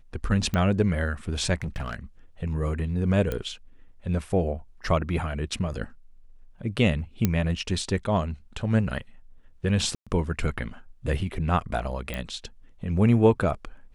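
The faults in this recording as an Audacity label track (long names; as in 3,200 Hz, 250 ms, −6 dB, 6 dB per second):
0.540000	0.540000	click −14 dBFS
1.540000	1.950000	clipping −26 dBFS
3.320000	3.320000	click −15 dBFS
7.250000	7.250000	click −8 dBFS
9.950000	10.070000	drop-out 116 ms
12.140000	12.140000	click −16 dBFS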